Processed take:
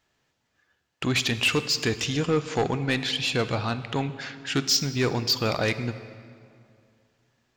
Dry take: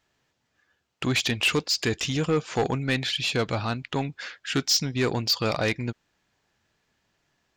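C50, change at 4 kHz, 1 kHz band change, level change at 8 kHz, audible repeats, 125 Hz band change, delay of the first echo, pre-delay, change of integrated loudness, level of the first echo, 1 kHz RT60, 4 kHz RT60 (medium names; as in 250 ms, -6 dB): 12.5 dB, 0.0 dB, +0.5 dB, 0.0 dB, no echo, +0.5 dB, no echo, 24 ms, 0.0 dB, no echo, 2.3 s, 1.6 s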